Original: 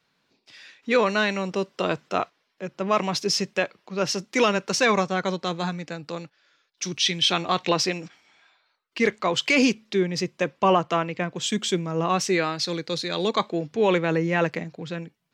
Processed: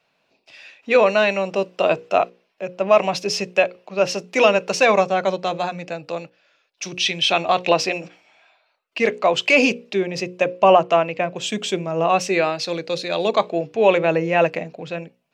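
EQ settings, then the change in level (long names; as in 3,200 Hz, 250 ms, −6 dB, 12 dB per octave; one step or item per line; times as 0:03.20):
parametric band 640 Hz +12.5 dB 0.88 octaves
parametric band 2,600 Hz +10.5 dB 0.29 octaves
mains-hum notches 60/120/180/240/300/360/420/480/540 Hz
−1.0 dB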